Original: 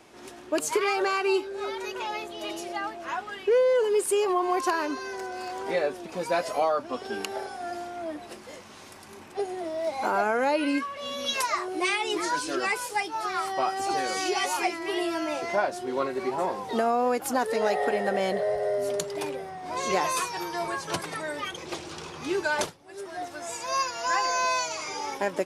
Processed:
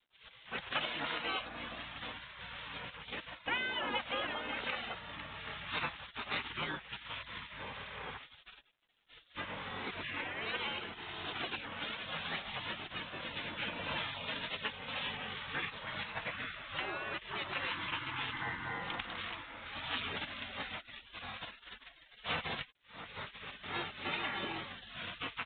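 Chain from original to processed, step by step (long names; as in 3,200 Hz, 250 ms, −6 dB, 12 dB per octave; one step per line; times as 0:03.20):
gate on every frequency bin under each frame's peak −25 dB weak
level +7 dB
G.726 32 kbit/s 8,000 Hz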